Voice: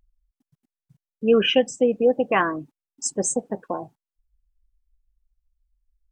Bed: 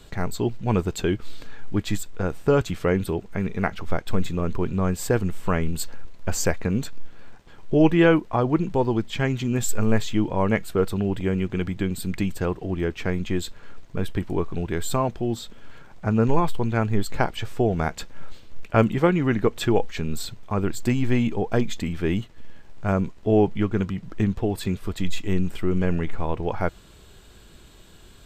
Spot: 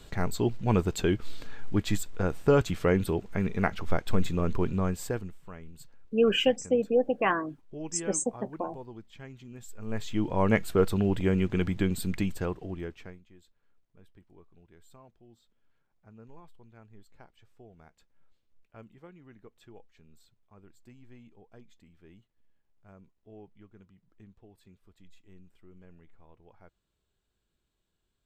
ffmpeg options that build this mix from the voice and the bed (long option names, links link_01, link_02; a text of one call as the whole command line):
ffmpeg -i stem1.wav -i stem2.wav -filter_complex "[0:a]adelay=4900,volume=-5.5dB[link_01];[1:a]volume=18dB,afade=type=out:start_time=4.62:duration=0.76:silence=0.105925,afade=type=in:start_time=9.79:duration=0.76:silence=0.0944061,afade=type=out:start_time=11.85:duration=1.36:silence=0.0316228[link_02];[link_01][link_02]amix=inputs=2:normalize=0" out.wav